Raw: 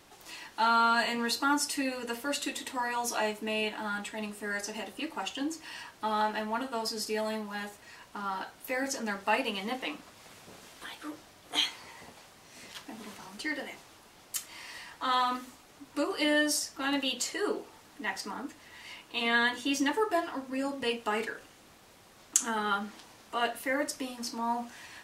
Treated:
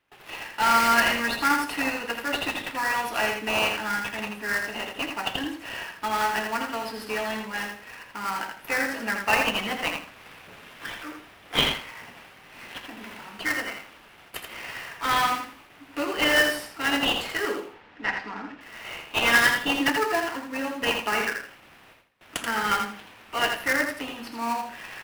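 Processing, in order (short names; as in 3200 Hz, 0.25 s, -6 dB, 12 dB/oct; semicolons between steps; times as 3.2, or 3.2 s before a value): gate with hold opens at -46 dBFS; EQ curve 450 Hz 0 dB, 1100 Hz +4 dB, 1700 Hz +11 dB, 2700 Hz +14 dB, 6700 Hz -14 dB, 11000 Hz 0 dB; in parallel at -4 dB: sample-rate reducer 3500 Hz, jitter 20%; 17.65–18.61 on the sum: air absorption 180 m; feedback echo 82 ms, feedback 22%, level -5.5 dB; gain -3.5 dB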